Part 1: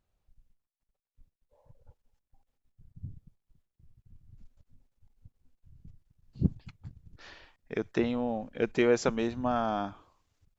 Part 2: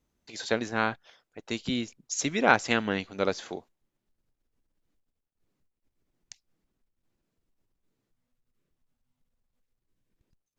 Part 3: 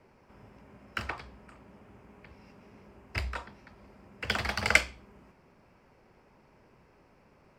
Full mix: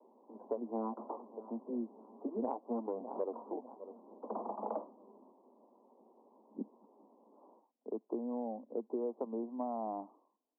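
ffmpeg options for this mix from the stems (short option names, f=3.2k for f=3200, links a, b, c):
-filter_complex "[0:a]adelay=150,volume=-5.5dB[a];[1:a]flanger=delay=1.3:depth=7.3:regen=0:speed=0.65:shape=sinusoidal,volume=0.5dB,asplit=2[b][c];[c]volume=-20.5dB[d];[2:a]volume=-1dB[e];[d]aecho=0:1:601|1202|1803|2404|3005:1|0.35|0.122|0.0429|0.015[f];[a][b][e][f]amix=inputs=4:normalize=0,asuperpass=centerf=480:order=20:qfactor=0.57,acompressor=threshold=-33dB:ratio=10"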